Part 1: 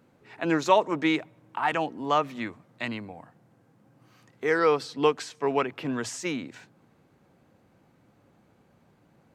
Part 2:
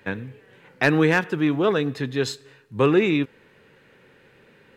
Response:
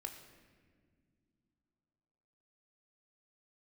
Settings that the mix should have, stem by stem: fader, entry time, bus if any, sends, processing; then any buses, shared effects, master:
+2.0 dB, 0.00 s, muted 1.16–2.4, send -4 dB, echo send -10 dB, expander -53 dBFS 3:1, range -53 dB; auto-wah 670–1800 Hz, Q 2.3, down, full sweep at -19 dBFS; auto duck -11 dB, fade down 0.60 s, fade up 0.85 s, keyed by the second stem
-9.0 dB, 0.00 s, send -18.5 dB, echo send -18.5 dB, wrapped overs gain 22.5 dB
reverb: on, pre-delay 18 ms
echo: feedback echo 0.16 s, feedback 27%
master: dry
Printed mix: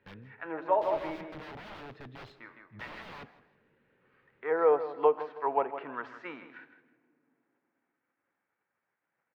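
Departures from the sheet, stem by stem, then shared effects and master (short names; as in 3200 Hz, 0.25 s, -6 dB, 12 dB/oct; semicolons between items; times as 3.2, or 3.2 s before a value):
stem 2 -9.0 dB -> -15.5 dB; master: extra air absorption 350 m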